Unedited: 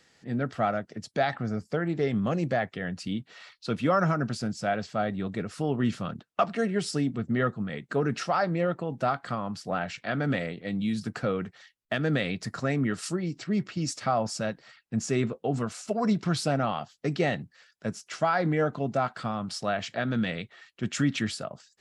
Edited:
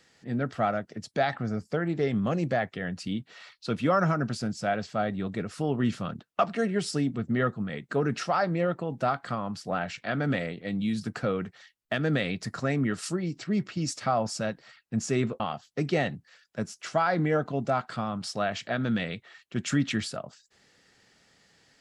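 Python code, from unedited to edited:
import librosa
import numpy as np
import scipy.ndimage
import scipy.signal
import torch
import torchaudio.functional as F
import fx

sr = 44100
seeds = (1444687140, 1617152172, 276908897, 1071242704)

y = fx.edit(x, sr, fx.cut(start_s=15.4, length_s=1.27), tone=tone)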